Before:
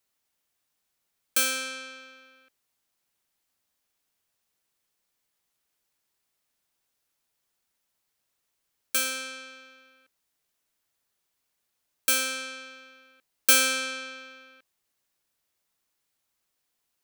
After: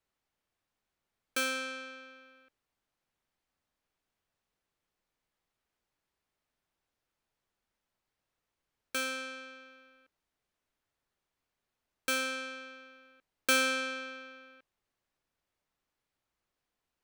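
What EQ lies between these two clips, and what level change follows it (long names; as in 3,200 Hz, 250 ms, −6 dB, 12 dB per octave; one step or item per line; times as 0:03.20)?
low-pass filter 1,800 Hz 6 dB per octave
low-shelf EQ 61 Hz +8.5 dB
0.0 dB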